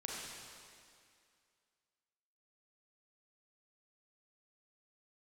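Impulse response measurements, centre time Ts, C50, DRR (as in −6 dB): 133 ms, −2.0 dB, −4.0 dB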